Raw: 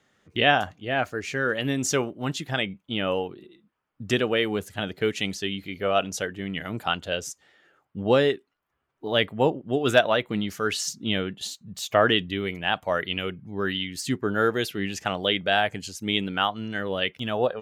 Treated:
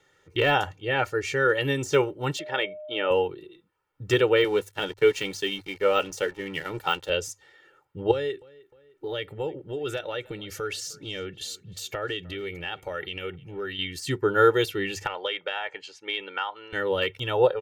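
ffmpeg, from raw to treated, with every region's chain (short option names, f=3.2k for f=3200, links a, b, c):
-filter_complex "[0:a]asettb=1/sr,asplit=3[a][b][c];[a]atrim=end=2.394[d];[b]atrim=start=2.39:end=3.11,asetpts=PTS-STARTPTS,afade=t=in:d=0.004:c=qsin,afade=t=out:st=0.716:d=0.004:c=qsin,highpass=330,lowpass=3.2k,aeval=exprs='val(0)+0.0158*sin(2*PI*610*n/s)':c=same[e];[c]atrim=start=3.106[f];[d][e]acrossfade=d=0.004:c1=hsin:c2=qsin[g];[g][f]acrossfade=d=0.004:c1=qsin:c2=hsin,asettb=1/sr,asplit=3[h][i][j];[h]atrim=end=4.444[k];[i]atrim=start=4.44:end=7.1,asetpts=PTS-STARTPTS,afade=t=in:d=0.004:c=qsin,afade=t=out:st=2.656:d=0.004:c=qsin,highpass=f=120:w=0.5412,highpass=f=120:w=1.3066,asplit=2[l][m];[m]adelay=14,volume=-13dB[n];[l][n]amix=inputs=2:normalize=0,atrim=end_sample=117306,aeval=exprs='sgn(val(0))*max(abs(val(0))-0.00473,0)':c=same[o];[j]atrim=start=7.096[p];[k][o]acrossfade=d=0.004:c1=hsin:c2=qsin[q];[q][p]acrossfade=d=0.004:c1=qsin:c2=hsin,asettb=1/sr,asplit=3[r][s][t];[r]atrim=end=8.114[u];[s]atrim=start=8.11:end=13.79,asetpts=PTS-STARTPTS,afade=t=in:d=0.004:c=qsin,afade=t=out:st=5.676:d=0.004:c=qsin,equalizer=f=980:w=5:g=-10.5,acompressor=threshold=-33dB:ratio=3:attack=3.2:release=140:knee=1:detection=peak,asplit=2[v][w];[w]adelay=306,lowpass=f=3.9k:p=1,volume=-22.5dB,asplit=2[x][y];[y]adelay=306,lowpass=f=3.9k:p=1,volume=0.51,asplit=2[z][aa];[aa]adelay=306,lowpass=f=3.9k:p=1,volume=0.51[ab];[v][x][z][ab]amix=inputs=4:normalize=0,atrim=end_sample=250488[ac];[t]atrim=start=13.786[ad];[u][ac]acrossfade=d=0.004:c1=hsin:c2=qsin[ae];[ae][ad]acrossfade=d=0.004:c1=qsin:c2=hsin,asettb=1/sr,asplit=3[af][ag][ah];[af]atrim=end=15.064[ai];[ag]atrim=start=15.06:end=16.73,asetpts=PTS-STARTPTS,afade=t=in:d=0.004:c=qsin,afade=t=out:st=1.666:d=0.004:c=qsin,highpass=620,lowpass=2.8k,acompressor=threshold=-25dB:ratio=16:attack=3.2:release=140:knee=1:detection=peak[aj];[ah]atrim=start=16.726[ak];[ai][aj]acrossfade=d=0.004:c1=hsin:c2=qsin[al];[al][ak]acrossfade=d=0.004:c1=qsin:c2=hsin,bandreject=f=50:t=h:w=6,bandreject=f=100:t=h:w=6,deesser=0.75,aecho=1:1:2.2:0.91"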